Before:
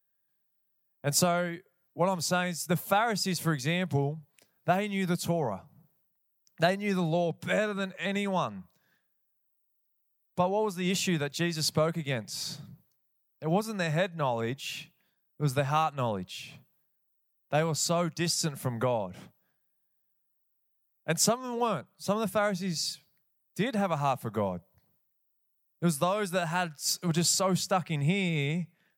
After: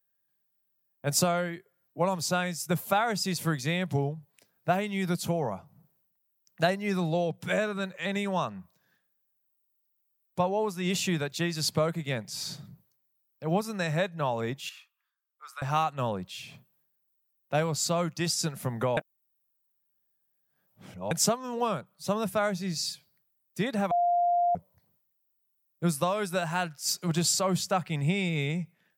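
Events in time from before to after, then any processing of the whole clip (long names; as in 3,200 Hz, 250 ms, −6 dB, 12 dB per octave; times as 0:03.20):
0:14.69–0:15.62: four-pole ladder high-pass 1,100 Hz, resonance 70%
0:18.97–0:21.11: reverse
0:23.91–0:24.55: beep over 700 Hz −21.5 dBFS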